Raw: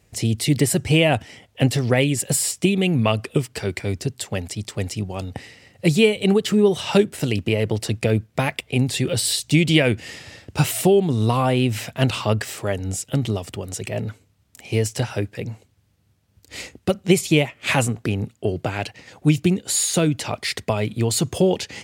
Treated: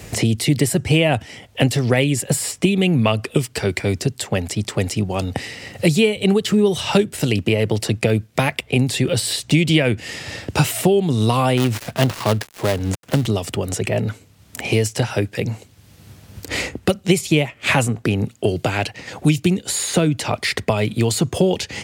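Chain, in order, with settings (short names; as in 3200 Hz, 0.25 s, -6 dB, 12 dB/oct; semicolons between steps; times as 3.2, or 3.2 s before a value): 11.57–13.26 switching dead time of 0.19 ms; three-band squash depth 70%; gain +2 dB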